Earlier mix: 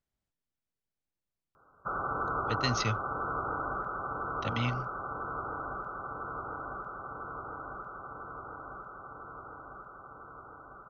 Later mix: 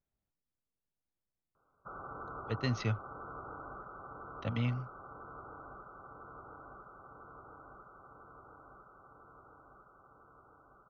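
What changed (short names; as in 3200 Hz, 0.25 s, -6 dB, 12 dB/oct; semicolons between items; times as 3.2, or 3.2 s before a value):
background -10.0 dB; master: add LPF 1300 Hz 6 dB/oct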